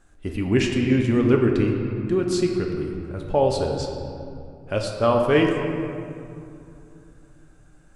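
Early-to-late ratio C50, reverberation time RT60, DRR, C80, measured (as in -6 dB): 3.5 dB, 2.6 s, 1.0 dB, 4.5 dB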